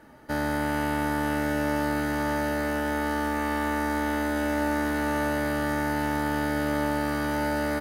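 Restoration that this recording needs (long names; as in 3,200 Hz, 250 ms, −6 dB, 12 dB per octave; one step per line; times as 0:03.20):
clipped peaks rebuilt −14.5 dBFS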